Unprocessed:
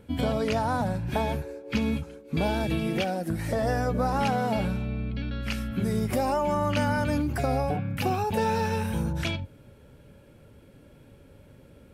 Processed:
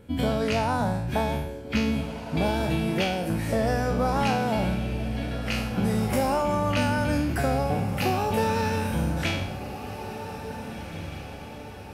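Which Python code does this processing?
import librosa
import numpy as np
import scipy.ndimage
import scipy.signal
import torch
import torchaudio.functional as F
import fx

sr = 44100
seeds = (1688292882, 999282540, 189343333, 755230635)

y = fx.spec_trails(x, sr, decay_s=0.69)
y = fx.echo_diffused(y, sr, ms=1808, feedback_pct=50, wet_db=-11)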